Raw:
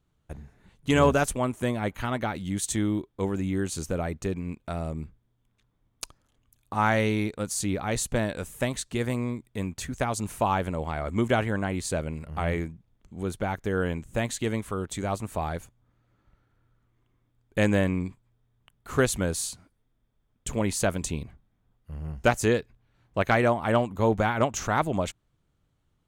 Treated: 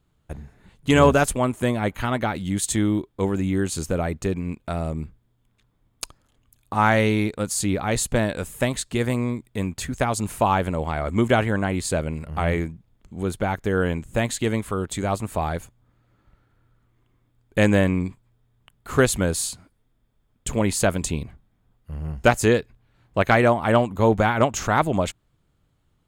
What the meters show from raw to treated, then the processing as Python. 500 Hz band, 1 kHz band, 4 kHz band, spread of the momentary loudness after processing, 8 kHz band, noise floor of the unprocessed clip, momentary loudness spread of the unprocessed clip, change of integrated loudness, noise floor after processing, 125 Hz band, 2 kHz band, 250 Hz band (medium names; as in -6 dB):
+5.0 dB, +5.0 dB, +5.0 dB, 13 LU, +4.5 dB, -72 dBFS, 13 LU, +5.0 dB, -67 dBFS, +5.0 dB, +5.0 dB, +5.0 dB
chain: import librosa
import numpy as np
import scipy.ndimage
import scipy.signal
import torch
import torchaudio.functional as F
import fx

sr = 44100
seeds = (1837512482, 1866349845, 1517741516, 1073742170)

y = fx.notch(x, sr, hz=5900.0, q=13.0)
y = F.gain(torch.from_numpy(y), 5.0).numpy()